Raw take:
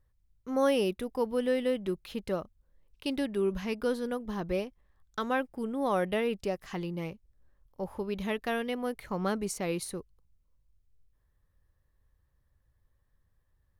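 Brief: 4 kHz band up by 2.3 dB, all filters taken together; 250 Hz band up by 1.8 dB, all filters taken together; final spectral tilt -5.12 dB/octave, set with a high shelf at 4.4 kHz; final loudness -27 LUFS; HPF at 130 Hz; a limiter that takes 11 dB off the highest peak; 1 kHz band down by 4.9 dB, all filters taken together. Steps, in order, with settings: high-pass 130 Hz; peaking EQ 250 Hz +3 dB; peaking EQ 1 kHz -7 dB; peaking EQ 4 kHz +7 dB; treble shelf 4.4 kHz -6 dB; trim +9.5 dB; peak limiter -17.5 dBFS

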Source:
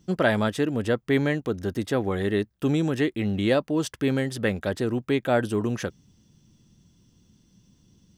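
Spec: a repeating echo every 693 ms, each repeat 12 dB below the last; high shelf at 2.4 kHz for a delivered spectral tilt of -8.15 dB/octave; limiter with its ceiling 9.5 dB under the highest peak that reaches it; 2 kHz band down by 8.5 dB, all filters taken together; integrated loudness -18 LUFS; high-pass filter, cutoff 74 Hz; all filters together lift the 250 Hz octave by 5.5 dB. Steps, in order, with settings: high-pass 74 Hz; peaking EQ 250 Hz +7 dB; peaking EQ 2 kHz -9 dB; treble shelf 2.4 kHz -5 dB; peak limiter -17 dBFS; feedback delay 693 ms, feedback 25%, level -12 dB; trim +8.5 dB

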